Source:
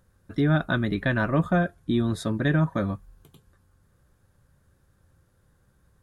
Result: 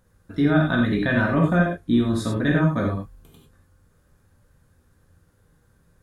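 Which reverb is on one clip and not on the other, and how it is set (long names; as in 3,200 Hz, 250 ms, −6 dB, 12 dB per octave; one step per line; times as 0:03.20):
reverb whose tail is shaped and stops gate 120 ms flat, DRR −1.5 dB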